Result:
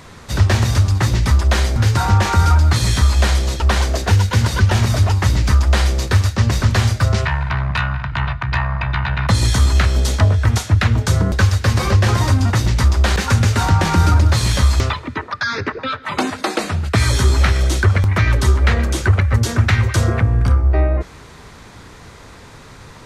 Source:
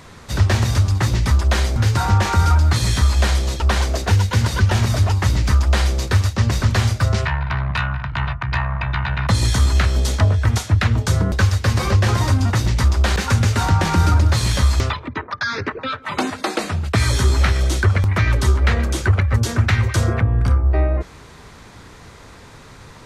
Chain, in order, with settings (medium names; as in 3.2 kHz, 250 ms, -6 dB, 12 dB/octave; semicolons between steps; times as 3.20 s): on a send: elliptic high-pass 1.4 kHz + reverberation RT60 3.4 s, pre-delay 4 ms, DRR 20.5 dB; on the sum: trim +2 dB